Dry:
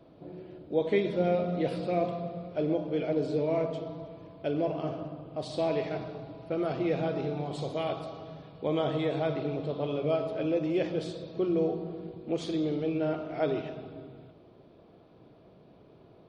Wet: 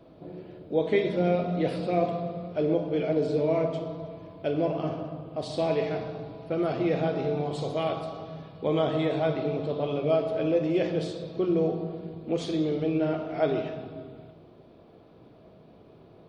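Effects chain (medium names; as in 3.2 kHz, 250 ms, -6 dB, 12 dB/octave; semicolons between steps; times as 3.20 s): plate-style reverb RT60 0.74 s, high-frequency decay 0.7×, DRR 8.5 dB; trim +2.5 dB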